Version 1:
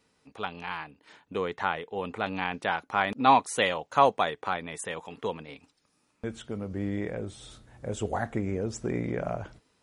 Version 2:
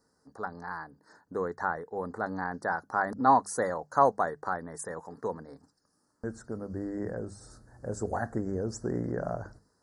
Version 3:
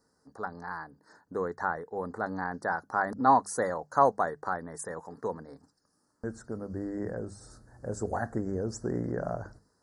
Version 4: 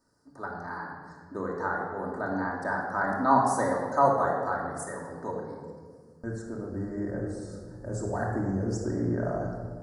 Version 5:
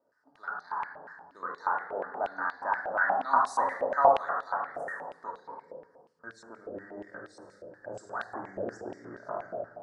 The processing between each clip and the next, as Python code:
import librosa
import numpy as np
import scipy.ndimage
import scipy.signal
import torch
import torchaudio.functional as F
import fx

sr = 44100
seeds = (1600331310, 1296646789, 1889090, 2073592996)

y1 = scipy.signal.sosfilt(scipy.signal.ellip(3, 1.0, 50, [1700.0, 4600.0], 'bandstop', fs=sr, output='sos'), x)
y1 = fx.hum_notches(y1, sr, base_hz=50, count=4)
y1 = F.gain(torch.from_numpy(y1), -1.0).numpy()
y2 = y1
y3 = fx.room_shoebox(y2, sr, seeds[0], volume_m3=2100.0, walls='mixed', distance_m=2.7)
y3 = F.gain(torch.from_numpy(y3), -2.5).numpy()
y4 = fx.filter_held_bandpass(y3, sr, hz=8.4, low_hz=590.0, high_hz=3800.0)
y4 = F.gain(torch.from_numpy(y4), 8.5).numpy()